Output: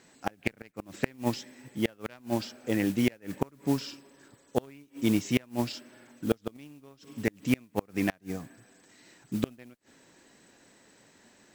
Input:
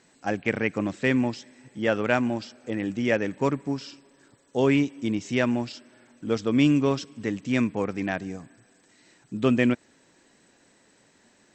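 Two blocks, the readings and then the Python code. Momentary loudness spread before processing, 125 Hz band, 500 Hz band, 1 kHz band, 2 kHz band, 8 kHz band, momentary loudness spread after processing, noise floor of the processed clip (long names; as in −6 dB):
13 LU, −5.5 dB, −8.0 dB, −6.5 dB, −8.5 dB, +1.0 dB, 16 LU, −63 dBFS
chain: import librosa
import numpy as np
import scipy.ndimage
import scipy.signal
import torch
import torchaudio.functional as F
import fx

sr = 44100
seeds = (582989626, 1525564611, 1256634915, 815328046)

y = fx.mod_noise(x, sr, seeds[0], snr_db=19)
y = fx.cheby_harmonics(y, sr, harmonics=(3,), levels_db=(-14,), full_scale_db=-7.0)
y = fx.gate_flip(y, sr, shuts_db=-19.0, range_db=-33)
y = F.gain(torch.from_numpy(y), 9.0).numpy()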